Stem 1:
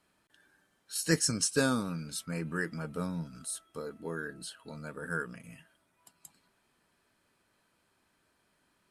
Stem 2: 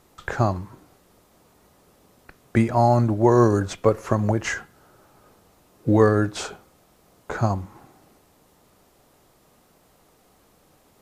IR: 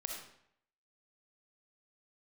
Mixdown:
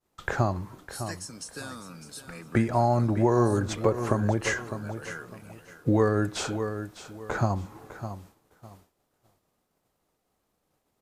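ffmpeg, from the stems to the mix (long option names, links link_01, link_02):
-filter_complex "[0:a]acrossover=split=230|870[link_01][link_02][link_03];[link_01]acompressor=threshold=-48dB:ratio=4[link_04];[link_02]acompressor=threshold=-44dB:ratio=4[link_05];[link_03]acompressor=threshold=-37dB:ratio=4[link_06];[link_04][link_05][link_06]amix=inputs=3:normalize=0,volume=-2dB,asplit=2[link_07][link_08];[link_08]volume=-12dB[link_09];[1:a]volume=-0.5dB,asplit=2[link_10][link_11];[link_11]volume=-13.5dB[link_12];[link_09][link_12]amix=inputs=2:normalize=0,aecho=0:1:604|1208|1812|2416:1|0.25|0.0625|0.0156[link_13];[link_07][link_10][link_13]amix=inputs=3:normalize=0,agate=range=-33dB:threshold=-47dB:ratio=3:detection=peak,acompressor=threshold=-22dB:ratio=2"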